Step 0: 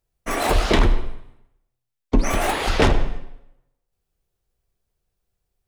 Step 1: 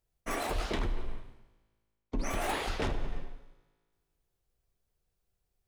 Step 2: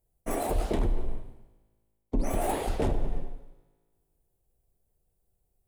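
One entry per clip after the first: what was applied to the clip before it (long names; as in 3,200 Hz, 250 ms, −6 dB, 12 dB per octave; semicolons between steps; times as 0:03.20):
reversed playback; downward compressor, threshold −25 dBFS, peak gain reduction 13 dB; reversed playback; tuned comb filter 54 Hz, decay 1.8 s, harmonics all, mix 40%
flat-topped bell 2,600 Hz −11.5 dB 2.9 octaves; level +6 dB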